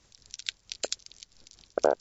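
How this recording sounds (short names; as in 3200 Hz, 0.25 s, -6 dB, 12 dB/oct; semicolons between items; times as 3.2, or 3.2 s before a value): tremolo triangle 4.5 Hz, depth 65%; MP3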